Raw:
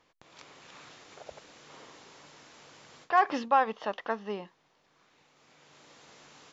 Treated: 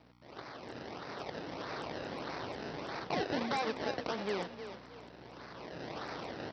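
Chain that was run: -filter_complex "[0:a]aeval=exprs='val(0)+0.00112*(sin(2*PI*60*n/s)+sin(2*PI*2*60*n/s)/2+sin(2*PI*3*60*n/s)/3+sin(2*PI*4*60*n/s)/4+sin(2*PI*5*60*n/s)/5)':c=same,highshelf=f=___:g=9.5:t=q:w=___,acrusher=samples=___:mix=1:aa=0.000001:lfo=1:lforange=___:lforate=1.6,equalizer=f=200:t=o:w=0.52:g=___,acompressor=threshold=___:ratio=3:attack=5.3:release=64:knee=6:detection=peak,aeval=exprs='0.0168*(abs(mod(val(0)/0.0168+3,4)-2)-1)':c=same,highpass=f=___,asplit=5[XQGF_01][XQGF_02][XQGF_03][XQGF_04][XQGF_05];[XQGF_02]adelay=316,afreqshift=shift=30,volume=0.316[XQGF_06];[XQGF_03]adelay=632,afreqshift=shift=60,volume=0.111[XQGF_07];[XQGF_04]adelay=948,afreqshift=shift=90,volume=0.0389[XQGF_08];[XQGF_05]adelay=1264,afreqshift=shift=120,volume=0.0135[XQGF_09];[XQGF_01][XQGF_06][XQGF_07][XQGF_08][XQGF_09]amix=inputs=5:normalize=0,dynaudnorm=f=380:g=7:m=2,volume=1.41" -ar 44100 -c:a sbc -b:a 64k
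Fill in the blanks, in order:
3300, 1.5, 27, 27, -3.5, 0.00708, 140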